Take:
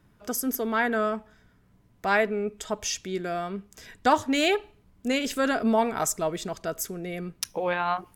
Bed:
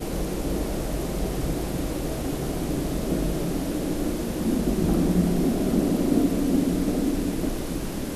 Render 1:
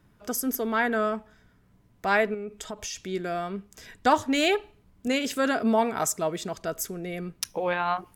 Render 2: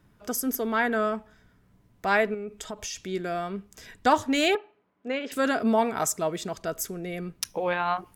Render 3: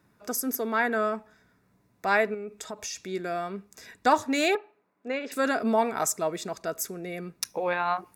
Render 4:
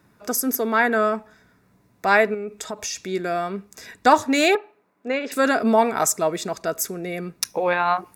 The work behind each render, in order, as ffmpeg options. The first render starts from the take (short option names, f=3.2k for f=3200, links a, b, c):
-filter_complex "[0:a]asettb=1/sr,asplit=3[a][b][c];[a]atrim=end=2.344[d];[b]atrim=start=2.34:end=2.97,asetpts=PTS-STARTPTS,afade=t=in:d=0.004:c=qsin,afade=t=out:st=0.626:d=0.004:c=qsin,acompressor=threshold=-31dB:ratio=6:attack=3.2:release=140:knee=1:detection=peak[e];[c]atrim=start=2.966[f];[d][e]acrossfade=d=0.004:c1=hsin:c2=qsin[g];[g][f]acrossfade=d=0.004:c1=qsin:c2=hsin,asettb=1/sr,asplit=3[h][i][j];[h]atrim=end=5.074[k];[i]atrim=start=5.07:end=6.57,asetpts=PTS-STARTPTS,afade=t=in:d=0.004:c=qsin,afade=t=out:st=1.496:d=0.004:c=qsin,highpass=74[l];[j]atrim=start=6.566[m];[k][l]acrossfade=d=0.004:c1=hsin:c2=qsin[n];[n][m]acrossfade=d=0.004:c1=qsin:c2=hsin"
-filter_complex "[0:a]asettb=1/sr,asplit=3[a][b][c];[a]atrim=end=4.554[d];[b]atrim=start=4.55:end=5.32,asetpts=PTS-STARTPTS,afade=t=in:d=0.004:c=qsin,afade=t=out:st=0.766:d=0.004:c=qsin,highpass=380,lowpass=2.1k[e];[c]atrim=start=5.316[f];[d][e]acrossfade=d=0.004:c1=hsin:c2=qsin[g];[g][f]acrossfade=d=0.004:c1=qsin:c2=hsin"
-af "highpass=f=220:p=1,bandreject=f=3.1k:w=5"
-af "volume=6.5dB"